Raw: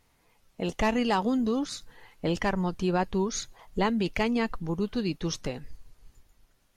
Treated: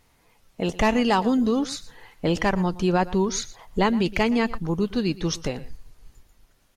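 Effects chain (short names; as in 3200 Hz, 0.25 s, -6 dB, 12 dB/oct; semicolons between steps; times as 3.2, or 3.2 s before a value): echo 0.117 s -18.5 dB; gain +5 dB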